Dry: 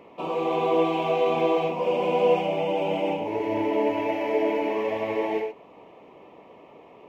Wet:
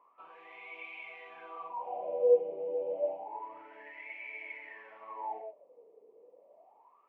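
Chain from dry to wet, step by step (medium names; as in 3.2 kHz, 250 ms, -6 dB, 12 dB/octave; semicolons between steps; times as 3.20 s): wah-wah 0.29 Hz 450–2300 Hz, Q 13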